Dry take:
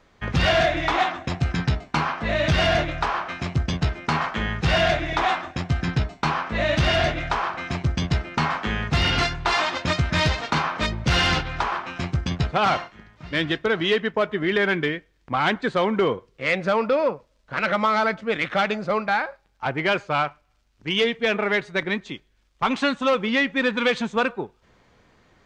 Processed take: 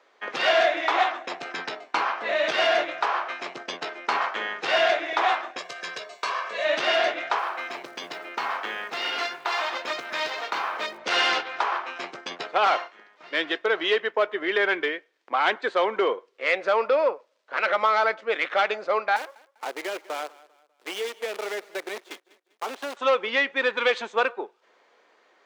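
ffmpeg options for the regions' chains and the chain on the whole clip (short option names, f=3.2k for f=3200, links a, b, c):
-filter_complex "[0:a]asettb=1/sr,asplit=3[a][b][c];[a]atrim=end=5.584[d];[b]atrim=start=5.58:end=6.65,asetpts=PTS-STARTPTS,afade=t=in:d=0.004:c=qsin,afade=t=out:st=1.066:d=0.004:c=qsin,aemphasis=mode=production:type=75kf,aecho=1:1:1.8:0.72,atrim=end_sample=47187,acompressor=threshold=-35dB:ratio=1.5:attack=3.2:release=140:knee=1:detection=peak[e];[c]atrim=start=6.646[f];[d][e]acrossfade=d=0.004:c1=hsin:c2=qsin[g];[g][f]acrossfade=d=0.004:c1=qsin:c2=hsin,asettb=1/sr,asplit=3[h][i][j];[h]atrim=end=7.384[k];[i]atrim=start=7.38:end=10.98,asetpts=PTS-STARTPTS,afade=t=in:d=0.004:c=qsin,afade=t=out:st=3.596:d=0.004:c=qsin,bandreject=f=60:t=h:w=6,bandreject=f=120:t=h:w=6,bandreject=f=180:t=h:w=6,bandreject=f=240:t=h:w=6,bandreject=f=300:t=h:w=6,bandreject=f=360:t=h:w=6,bandreject=f=420:t=h:w=6,bandreject=f=480:t=h:w=6,bandreject=f=540:t=h:w=6,bandreject=f=600:t=h:w=6,acompressor=threshold=-25dB:ratio=2:attack=3.2:release=140:knee=1:detection=peak,acrusher=bits=7:mode=log:mix=0:aa=0.000001[l];[j]atrim=start=10.976[m];[k][l]acrossfade=d=0.004:c1=hsin:c2=qsin[n];[n][m]acrossfade=d=0.004:c1=qsin:c2=hsin,asettb=1/sr,asplit=3[o][p][q];[o]atrim=end=19.164[r];[p]atrim=start=19.16:end=22.97,asetpts=PTS-STARTPTS,afade=t=in:d=0.004:c=qsin,afade=t=out:st=3.806:d=0.004:c=qsin,acrossover=split=270|590[s][t][u];[s]acompressor=threshold=-41dB:ratio=4[v];[t]acompressor=threshold=-30dB:ratio=4[w];[u]acompressor=threshold=-36dB:ratio=4[x];[v][w][x]amix=inputs=3:normalize=0,acrusher=bits=6:dc=4:mix=0:aa=0.000001,aecho=1:1:198|396|594:0.0944|0.034|0.0122,atrim=end_sample=168021[y];[q]atrim=start=22.966[z];[r][y]acrossfade=d=0.004:c1=hsin:c2=qsin[aa];[aa][z]acrossfade=d=0.004:c1=qsin:c2=hsin,highpass=f=390:w=0.5412,highpass=f=390:w=1.3066,highshelf=f=7k:g=-9"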